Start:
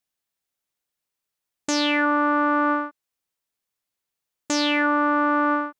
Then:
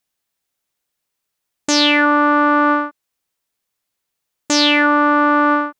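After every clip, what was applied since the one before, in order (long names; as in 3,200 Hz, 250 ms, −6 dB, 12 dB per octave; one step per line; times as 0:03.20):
dynamic equaliser 4,000 Hz, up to +5 dB, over −37 dBFS, Q 0.97
level +6.5 dB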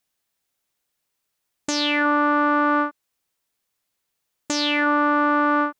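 brickwall limiter −10.5 dBFS, peak gain reduction 9.5 dB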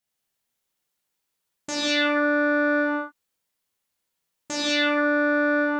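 reverb whose tail is shaped and stops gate 220 ms flat, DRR −5.5 dB
level −8.5 dB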